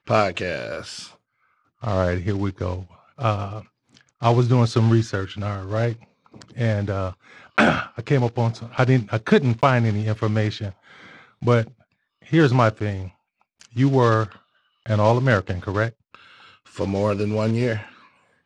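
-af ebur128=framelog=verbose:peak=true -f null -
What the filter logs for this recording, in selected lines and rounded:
Integrated loudness:
  I:         -21.8 LUFS
  Threshold: -33.1 LUFS
Loudness range:
  LRA:         4.5 LU
  Threshold: -42.8 LUFS
  LRA low:   -25.5 LUFS
  LRA high:  -21.0 LUFS
True peak:
  Peak:       -3.0 dBFS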